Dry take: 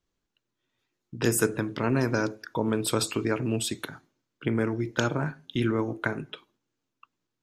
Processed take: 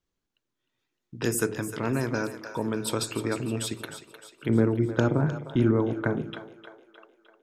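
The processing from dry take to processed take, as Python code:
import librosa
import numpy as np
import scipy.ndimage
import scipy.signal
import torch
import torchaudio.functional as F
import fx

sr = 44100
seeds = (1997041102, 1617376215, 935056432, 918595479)

y = fx.tilt_shelf(x, sr, db=7.5, hz=1300.0, at=(4.49, 6.22))
y = fx.echo_split(y, sr, split_hz=440.0, low_ms=87, high_ms=306, feedback_pct=52, wet_db=-11.0)
y = F.gain(torch.from_numpy(y), -2.5).numpy()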